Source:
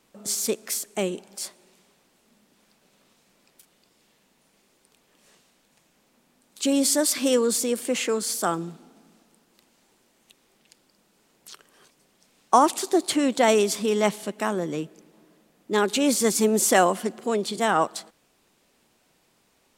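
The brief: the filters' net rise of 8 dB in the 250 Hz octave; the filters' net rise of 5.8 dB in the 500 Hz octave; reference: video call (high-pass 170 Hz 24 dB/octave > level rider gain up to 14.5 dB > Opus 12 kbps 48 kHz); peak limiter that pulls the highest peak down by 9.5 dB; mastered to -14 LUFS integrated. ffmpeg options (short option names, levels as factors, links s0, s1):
-af "equalizer=f=250:t=o:g=8.5,equalizer=f=500:t=o:g=4.5,alimiter=limit=0.299:level=0:latency=1,highpass=f=170:w=0.5412,highpass=f=170:w=1.3066,dynaudnorm=m=5.31,volume=1.68" -ar 48000 -c:a libopus -b:a 12k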